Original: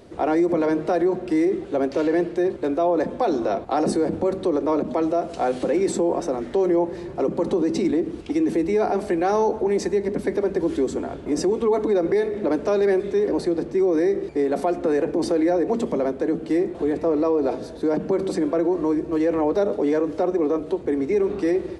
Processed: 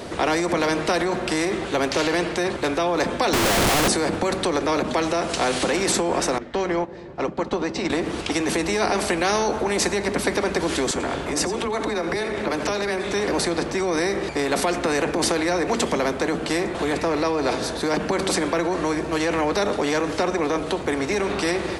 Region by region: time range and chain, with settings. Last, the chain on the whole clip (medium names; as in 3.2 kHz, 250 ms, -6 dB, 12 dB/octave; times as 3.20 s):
3.33–3.88 s: one-bit comparator + tilt EQ -3 dB/octave
6.38–7.90 s: distance through air 100 m + upward expansion 2.5:1, over -30 dBFS
10.91–13.13 s: delay 88 ms -16 dB + compression 2:1, threshold -27 dBFS + phase dispersion lows, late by 47 ms, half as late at 300 Hz
whole clip: bass shelf 150 Hz -6.5 dB; spectrum-flattening compressor 2:1; trim +5.5 dB